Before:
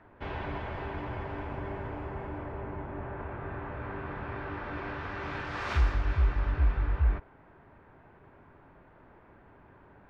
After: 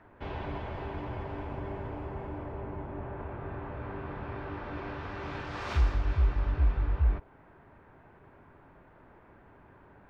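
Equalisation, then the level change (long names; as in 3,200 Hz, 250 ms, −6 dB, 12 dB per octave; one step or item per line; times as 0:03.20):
dynamic equaliser 1,700 Hz, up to −5 dB, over −54 dBFS, Q 1.1
0.0 dB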